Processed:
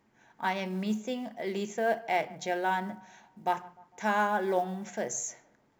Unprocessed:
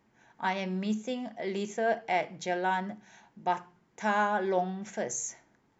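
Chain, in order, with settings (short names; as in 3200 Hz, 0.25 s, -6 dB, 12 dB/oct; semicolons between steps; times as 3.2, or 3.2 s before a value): notches 60/120/180 Hz; short-mantissa float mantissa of 4-bit; narrowing echo 0.151 s, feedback 49%, band-pass 820 Hz, level -20 dB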